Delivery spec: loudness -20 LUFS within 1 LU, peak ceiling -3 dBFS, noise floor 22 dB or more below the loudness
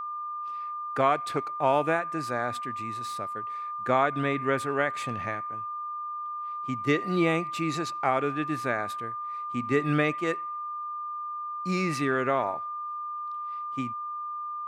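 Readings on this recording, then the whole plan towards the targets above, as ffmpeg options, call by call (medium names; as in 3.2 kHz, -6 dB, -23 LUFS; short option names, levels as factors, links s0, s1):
steady tone 1.2 kHz; tone level -32 dBFS; loudness -29.5 LUFS; peak level -9.5 dBFS; loudness target -20.0 LUFS
-> -af "bandreject=f=1200:w=30"
-af "volume=2.99,alimiter=limit=0.708:level=0:latency=1"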